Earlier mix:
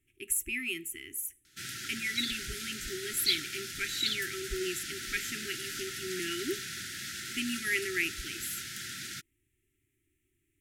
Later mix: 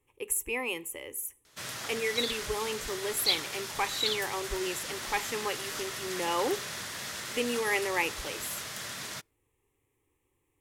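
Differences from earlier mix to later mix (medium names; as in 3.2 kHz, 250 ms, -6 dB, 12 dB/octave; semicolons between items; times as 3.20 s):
background: send on; master: remove brick-wall FIR band-stop 400–1300 Hz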